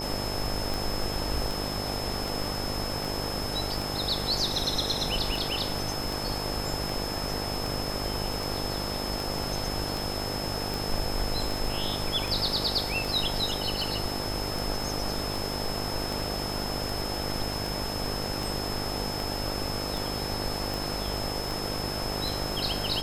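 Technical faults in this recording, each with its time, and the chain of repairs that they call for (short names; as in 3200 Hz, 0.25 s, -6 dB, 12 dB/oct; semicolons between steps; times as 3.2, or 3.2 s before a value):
buzz 50 Hz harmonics 18 -35 dBFS
tick 78 rpm
tone 5200 Hz -35 dBFS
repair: de-click; de-hum 50 Hz, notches 18; notch 5200 Hz, Q 30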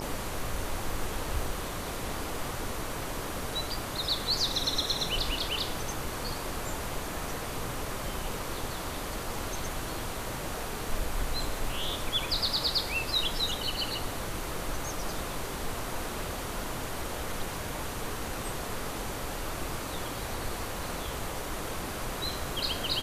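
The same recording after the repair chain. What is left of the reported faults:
none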